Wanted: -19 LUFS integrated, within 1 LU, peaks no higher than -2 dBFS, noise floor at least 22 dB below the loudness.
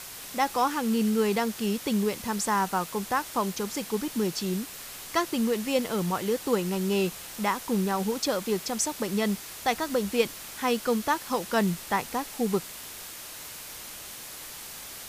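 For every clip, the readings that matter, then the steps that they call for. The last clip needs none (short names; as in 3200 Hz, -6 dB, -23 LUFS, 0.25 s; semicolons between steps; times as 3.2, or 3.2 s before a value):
noise floor -42 dBFS; noise floor target -51 dBFS; loudness -28.5 LUFS; peak -10.5 dBFS; loudness target -19.0 LUFS
-> noise print and reduce 9 dB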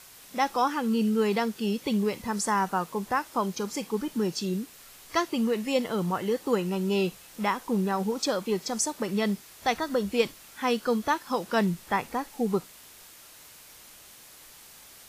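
noise floor -51 dBFS; loudness -28.5 LUFS; peak -10.5 dBFS; loudness target -19.0 LUFS
-> gain +9.5 dB; limiter -2 dBFS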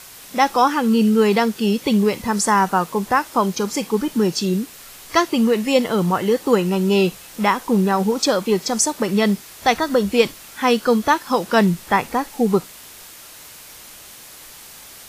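loudness -19.0 LUFS; peak -2.0 dBFS; noise floor -41 dBFS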